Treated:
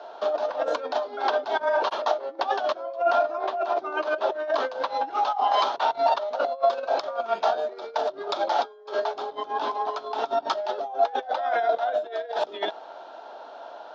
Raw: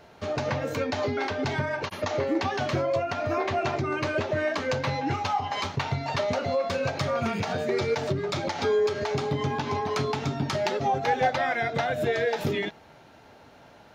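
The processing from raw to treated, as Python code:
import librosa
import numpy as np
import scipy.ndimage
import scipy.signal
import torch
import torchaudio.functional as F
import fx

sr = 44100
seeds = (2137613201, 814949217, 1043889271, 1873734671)

y = fx.peak_eq(x, sr, hz=2400.0, db=-9.0, octaves=2.0)
y = fx.over_compress(y, sr, threshold_db=-33.0, ratio=-0.5)
y = fx.cabinet(y, sr, low_hz=390.0, low_slope=24, high_hz=5000.0, hz=(420.0, 680.0, 970.0, 1400.0, 2100.0, 3400.0), db=(-3, 9, 6, 7, -7, 7))
y = y * librosa.db_to_amplitude(4.0)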